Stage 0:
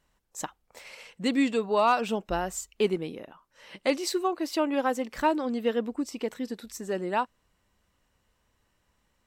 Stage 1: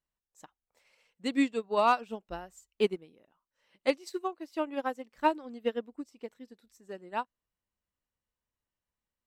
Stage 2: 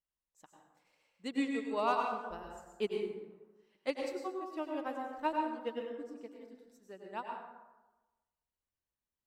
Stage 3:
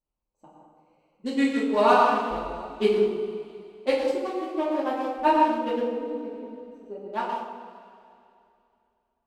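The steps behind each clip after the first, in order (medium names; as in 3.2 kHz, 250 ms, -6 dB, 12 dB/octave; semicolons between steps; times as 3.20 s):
upward expansion 2.5:1, over -34 dBFS
plate-style reverb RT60 1.1 s, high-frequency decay 0.5×, pre-delay 85 ms, DRR 1 dB; trim -8 dB
local Wiener filter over 25 samples; two-slope reverb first 0.48 s, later 2.7 s, from -15 dB, DRR -6 dB; trim +6.5 dB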